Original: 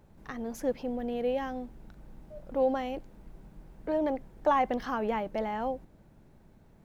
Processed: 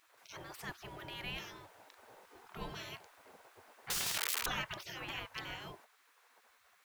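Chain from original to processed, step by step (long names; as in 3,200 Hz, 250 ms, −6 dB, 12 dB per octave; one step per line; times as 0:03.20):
0:03.90–0:04.46: sign of each sample alone
gate on every frequency bin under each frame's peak −25 dB weak
level +7.5 dB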